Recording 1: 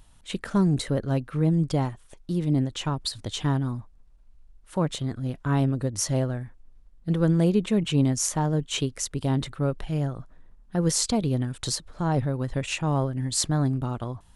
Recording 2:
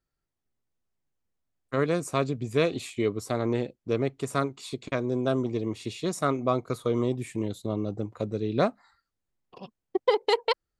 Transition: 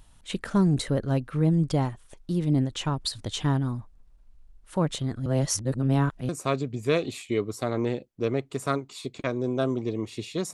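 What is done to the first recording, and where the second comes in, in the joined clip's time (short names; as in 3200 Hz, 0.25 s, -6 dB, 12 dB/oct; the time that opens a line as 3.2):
recording 1
5.26–6.29 reverse
6.29 switch to recording 2 from 1.97 s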